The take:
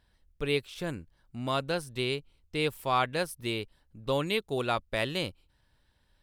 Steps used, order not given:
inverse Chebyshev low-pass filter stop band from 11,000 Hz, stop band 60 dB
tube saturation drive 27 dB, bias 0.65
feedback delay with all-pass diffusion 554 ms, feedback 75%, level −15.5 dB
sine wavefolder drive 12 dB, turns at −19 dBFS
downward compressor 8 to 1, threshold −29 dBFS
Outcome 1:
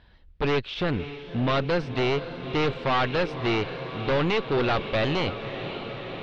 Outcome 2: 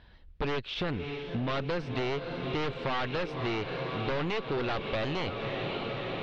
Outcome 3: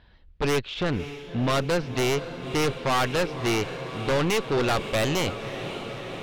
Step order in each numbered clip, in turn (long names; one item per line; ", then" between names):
tube saturation, then downward compressor, then feedback delay with all-pass diffusion, then sine wavefolder, then inverse Chebyshev low-pass filter
tube saturation, then feedback delay with all-pass diffusion, then sine wavefolder, then downward compressor, then inverse Chebyshev low-pass filter
inverse Chebyshev low-pass filter, then tube saturation, then downward compressor, then feedback delay with all-pass diffusion, then sine wavefolder